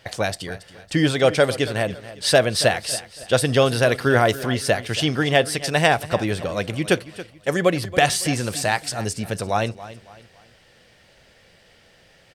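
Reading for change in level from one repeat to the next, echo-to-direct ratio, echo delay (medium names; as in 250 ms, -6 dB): -8.5 dB, -15.5 dB, 278 ms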